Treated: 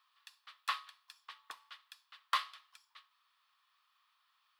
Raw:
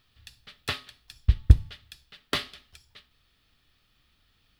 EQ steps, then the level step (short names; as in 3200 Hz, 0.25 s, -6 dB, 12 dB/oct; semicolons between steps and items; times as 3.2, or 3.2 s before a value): ladder high-pass 1000 Hz, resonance 80%; +3.5 dB